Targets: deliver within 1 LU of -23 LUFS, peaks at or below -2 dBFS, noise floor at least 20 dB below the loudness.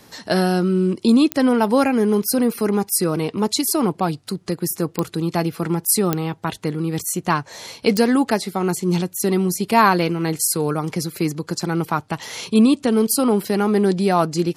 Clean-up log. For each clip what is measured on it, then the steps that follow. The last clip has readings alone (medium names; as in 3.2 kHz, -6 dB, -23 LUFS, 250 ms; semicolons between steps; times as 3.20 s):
clicks found 4; loudness -19.5 LUFS; peak level -2.0 dBFS; loudness target -23.0 LUFS
-> de-click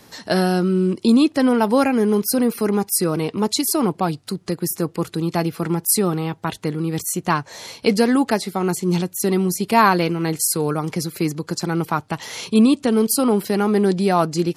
clicks found 0; loudness -19.5 LUFS; peak level -2.0 dBFS; loudness target -23.0 LUFS
-> trim -3.5 dB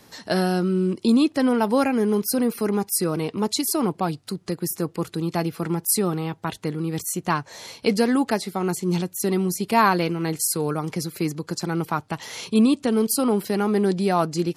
loudness -23.0 LUFS; peak level -5.5 dBFS; noise floor -53 dBFS